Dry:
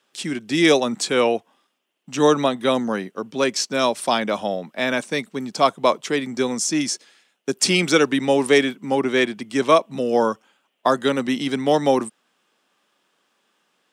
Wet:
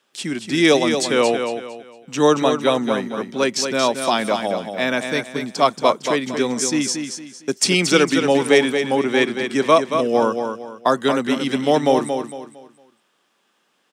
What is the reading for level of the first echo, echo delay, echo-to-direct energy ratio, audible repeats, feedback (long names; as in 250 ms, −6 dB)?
−7.0 dB, 228 ms, −6.5 dB, 3, 32%